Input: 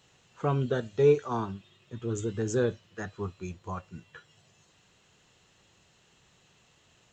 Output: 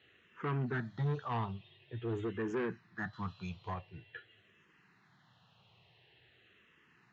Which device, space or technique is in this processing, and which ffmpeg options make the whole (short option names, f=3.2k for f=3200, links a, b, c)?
barber-pole phaser into a guitar amplifier: -filter_complex "[0:a]asettb=1/sr,asplit=3[a][b][c];[a]atrim=end=3.134[d];[b]atrim=start=3.13:end=3.74,asetpts=PTS-STARTPTS,afade=t=in:d=0.004:c=qsin,afade=t=out:st=0.606:d=0.004:c=qsin,highshelf=f=2.2k:g=10[e];[c]atrim=start=3.736[f];[d][e]acrossfade=d=0.004:c1=hsin:c2=qsin[g];[g][f]acrossfade=d=0.004:c1=qsin:c2=hsin,asplit=2[h][i];[i]afreqshift=-0.47[j];[h][j]amix=inputs=2:normalize=1,asoftclip=type=tanh:threshold=-30.5dB,highpass=100,equalizer=f=120:t=q:w=4:g=5,equalizer=f=260:t=q:w=4:g=-3,equalizer=f=540:t=q:w=4:g=-6,equalizer=f=1.8k:t=q:w=4:g=5,lowpass=f=3.8k:w=0.5412,lowpass=f=3.8k:w=1.3066,volume=1dB"